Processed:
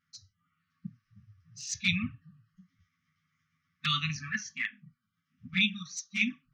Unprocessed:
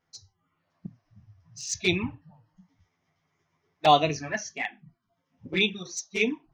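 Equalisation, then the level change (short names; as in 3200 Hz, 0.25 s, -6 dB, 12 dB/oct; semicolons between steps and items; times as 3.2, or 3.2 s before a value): brick-wall FIR band-stop 260–1100 Hz; low shelf 64 Hz -11.5 dB; high shelf 5800 Hz -8.5 dB; 0.0 dB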